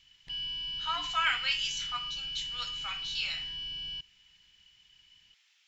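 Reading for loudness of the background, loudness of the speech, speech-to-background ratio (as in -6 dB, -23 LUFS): -35.0 LUFS, -33.5 LUFS, 1.5 dB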